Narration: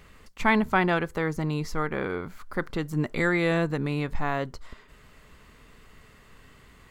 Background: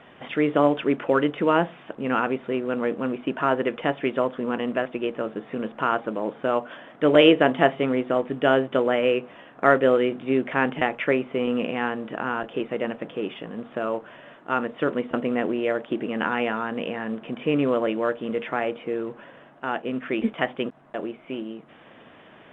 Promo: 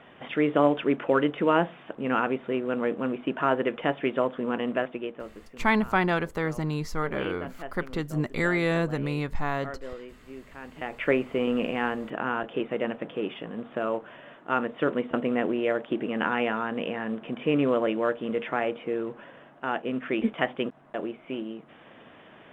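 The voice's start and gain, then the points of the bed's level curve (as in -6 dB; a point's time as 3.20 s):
5.20 s, -1.0 dB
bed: 4.83 s -2 dB
5.69 s -21 dB
10.62 s -21 dB
11.08 s -1.5 dB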